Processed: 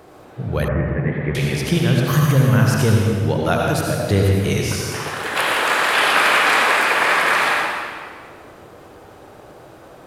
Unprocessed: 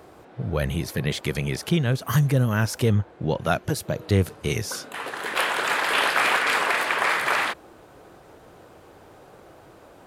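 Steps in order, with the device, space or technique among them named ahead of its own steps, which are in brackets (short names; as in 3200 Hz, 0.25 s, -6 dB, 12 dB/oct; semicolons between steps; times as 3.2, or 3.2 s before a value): stairwell (reverb RT60 1.9 s, pre-delay 67 ms, DRR -2 dB); 0.68–1.35 Chebyshev low-pass 2000 Hz, order 4; gain +2.5 dB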